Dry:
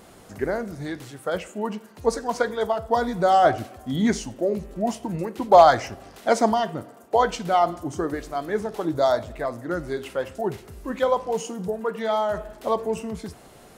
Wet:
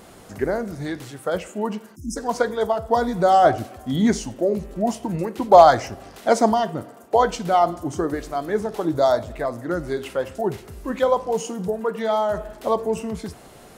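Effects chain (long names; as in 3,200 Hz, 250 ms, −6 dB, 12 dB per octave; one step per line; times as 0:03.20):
dynamic equaliser 2,300 Hz, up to −4 dB, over −36 dBFS, Q 0.74
time-frequency box erased 0:01.96–0:02.16, 350–5,000 Hz
level +3 dB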